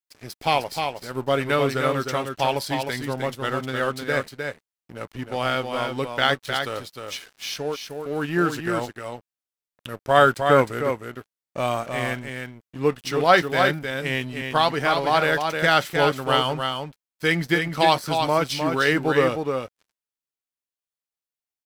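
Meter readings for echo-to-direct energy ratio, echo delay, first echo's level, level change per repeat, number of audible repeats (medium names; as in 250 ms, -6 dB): -5.5 dB, 308 ms, -5.5 dB, no regular repeats, 1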